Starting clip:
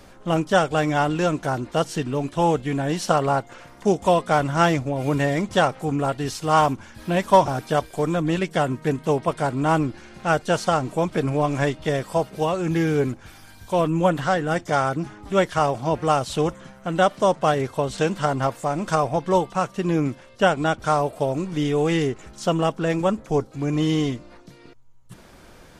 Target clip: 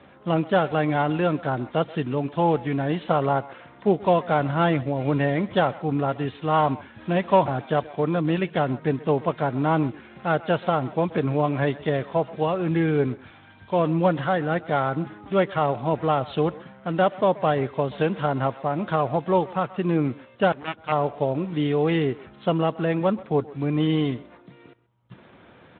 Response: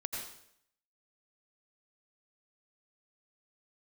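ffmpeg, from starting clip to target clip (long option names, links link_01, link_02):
-filter_complex "[0:a]acrossover=split=720[link_01][link_02];[link_02]asoftclip=type=tanh:threshold=-19dB[link_03];[link_01][link_03]amix=inputs=2:normalize=0,asplit=2[link_04][link_05];[link_05]adelay=130,highpass=300,lowpass=3400,asoftclip=type=hard:threshold=-16dB,volume=-18dB[link_06];[link_04][link_06]amix=inputs=2:normalize=0[link_07];[1:a]atrim=start_sample=2205,atrim=end_sample=3087,asetrate=36162,aresample=44100[link_08];[link_07][link_08]afir=irnorm=-1:irlink=0,asettb=1/sr,asplit=3[link_09][link_10][link_11];[link_09]atrim=end=20.524[link_12];[link_10]atrim=start=20.52:end=20.92,asetpts=PTS-STARTPTS,afade=type=in:duration=0.004:curve=qsin,afade=type=out:start_time=0.396:duration=0.004:curve=qsin,aeval=exprs='0.237*(cos(1*acos(clip(val(0)/0.237,-1,1)))-cos(1*PI/2))+0.106*(cos(3*acos(clip(val(0)/0.237,-1,1)))-cos(3*PI/2))':channel_layout=same[link_13];[link_11]atrim=start=20.916[link_14];[link_12][link_13]acrossfade=duration=0.004:curve1=hsin:curve2=qsin[link_15];[link_15][link_14]acrossfade=duration=0.004:curve1=qsin:curve2=hsin" -ar 8000 -c:a libspeex -b:a 24k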